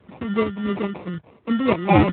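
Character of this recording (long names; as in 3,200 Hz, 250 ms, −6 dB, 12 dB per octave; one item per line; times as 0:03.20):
phaser sweep stages 4, 3 Hz, lowest notch 440–1,000 Hz
aliases and images of a low sample rate 1,600 Hz, jitter 0%
tremolo saw up 2.3 Hz, depth 45%
AMR narrowband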